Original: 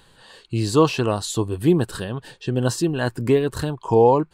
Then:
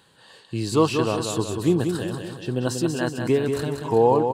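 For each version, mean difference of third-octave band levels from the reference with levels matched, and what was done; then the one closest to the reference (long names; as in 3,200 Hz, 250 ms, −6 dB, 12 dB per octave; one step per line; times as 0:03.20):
6.0 dB: high-pass filter 110 Hz
on a send: repeating echo 187 ms, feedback 52%, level −6 dB
on the sum: level −3 dB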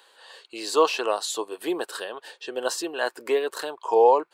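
7.5 dB: high-pass filter 450 Hz 24 dB per octave
parametric band 9,000 Hz −2.5 dB 0.77 octaves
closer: first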